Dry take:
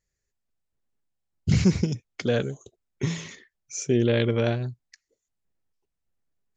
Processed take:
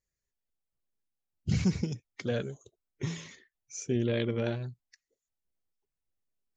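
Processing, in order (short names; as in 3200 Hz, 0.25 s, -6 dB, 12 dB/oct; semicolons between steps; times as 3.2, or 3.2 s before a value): bin magnitudes rounded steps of 15 dB; gain -7 dB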